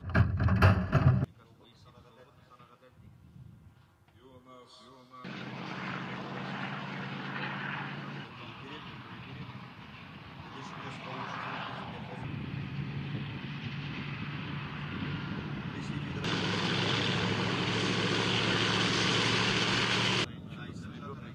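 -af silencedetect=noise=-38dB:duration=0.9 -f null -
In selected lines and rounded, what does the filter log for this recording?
silence_start: 1.24
silence_end: 5.24 | silence_duration: 4.00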